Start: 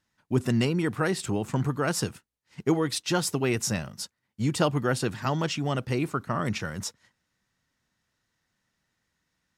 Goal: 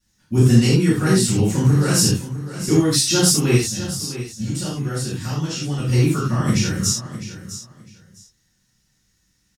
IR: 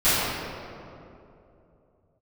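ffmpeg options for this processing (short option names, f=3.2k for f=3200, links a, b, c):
-filter_complex "[0:a]firequalizer=gain_entry='entry(160,0);entry(690,-10);entry(5900,7)':delay=0.05:min_phase=1,asettb=1/sr,asplit=3[a][b][c];[a]atrim=end=3.554[d];[b]atrim=start=3.55:end=5.79,asetpts=PTS-STARTPTS,afade=t=in:d=0.004:c=qsin,afade=t=out:st=2.236:d=0.004:c=qsin,acompressor=threshold=-34dB:ratio=6[e];[c]atrim=start=5.786[f];[d][e]acrossfade=d=0.004:c1=hsin:c2=qsin[g];[g][f]acrossfade=d=0.004:c1=qsin:c2=hsin,aecho=1:1:655|1310:0.224|0.0448[h];[1:a]atrim=start_sample=2205,atrim=end_sample=6174,asetrate=52920,aresample=44100[i];[h][i]afir=irnorm=-1:irlink=0,volume=-5dB"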